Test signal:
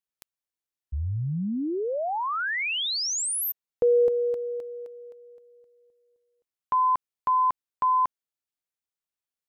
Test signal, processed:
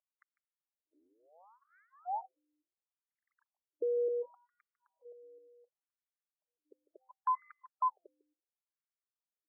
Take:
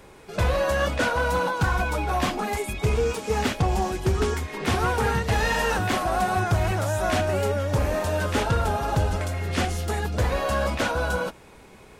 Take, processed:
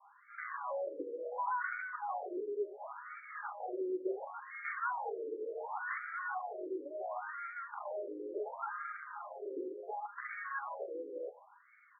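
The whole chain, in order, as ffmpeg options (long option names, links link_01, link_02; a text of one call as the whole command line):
ffmpeg -i in.wav -filter_complex "[0:a]lowshelf=frequency=340:gain=4,aecho=1:1:5:0.37,bandreject=frequency=259:width_type=h:width=4,bandreject=frequency=518:width_type=h:width=4,bandreject=frequency=777:width_type=h:width=4,adynamicequalizer=threshold=0.00891:dfrequency=630:dqfactor=3.6:tfrequency=630:tqfactor=3.6:attack=5:release=100:ratio=0.375:range=4:mode=cutabove:tftype=bell,acrossover=split=390|890[link_01][link_02][link_03];[link_02]alimiter=level_in=6dB:limit=-24dB:level=0:latency=1:release=27,volume=-6dB[link_04];[link_01][link_04][link_03]amix=inputs=3:normalize=0,aeval=exprs='0.282*(cos(1*acos(clip(val(0)/0.282,-1,1)))-cos(1*PI/2))+0.02*(cos(3*acos(clip(val(0)/0.282,-1,1)))-cos(3*PI/2))+0.00562*(cos(6*acos(clip(val(0)/0.282,-1,1)))-cos(6*PI/2))+0.00891*(cos(7*acos(clip(val(0)/0.282,-1,1)))-cos(7*PI/2))+0.00708*(cos(8*acos(clip(val(0)/0.282,-1,1)))-cos(8*PI/2))':channel_layout=same,aeval=exprs='val(0)+0.000631*(sin(2*PI*60*n/s)+sin(2*PI*2*60*n/s)/2+sin(2*PI*3*60*n/s)/3+sin(2*PI*4*60*n/s)/4+sin(2*PI*5*60*n/s)/5)':channel_layout=same,asoftclip=type=tanh:threshold=-23dB,asplit=2[link_05][link_06];[link_06]aecho=0:1:150:0.133[link_07];[link_05][link_07]amix=inputs=2:normalize=0,afftfilt=real='re*between(b*sr/1024,380*pow(1700/380,0.5+0.5*sin(2*PI*0.7*pts/sr))/1.41,380*pow(1700/380,0.5+0.5*sin(2*PI*0.7*pts/sr))*1.41)':imag='im*between(b*sr/1024,380*pow(1700/380,0.5+0.5*sin(2*PI*0.7*pts/sr))/1.41,380*pow(1700/380,0.5+0.5*sin(2*PI*0.7*pts/sr))*1.41)':win_size=1024:overlap=0.75,volume=-1.5dB" out.wav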